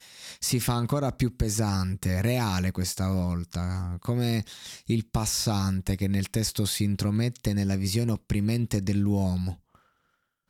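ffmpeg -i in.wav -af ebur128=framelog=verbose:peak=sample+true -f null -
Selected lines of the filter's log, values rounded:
Integrated loudness:
  I:         -27.4 LUFS
  Threshold: -37.7 LUFS
Loudness range:
  LRA:         1.6 LU
  Threshold: -47.6 LUFS
  LRA low:   -28.5 LUFS
  LRA high:  -26.9 LUFS
Sample peak:
  Peak:      -13.4 dBFS
True peak:
  Peak:      -13.4 dBFS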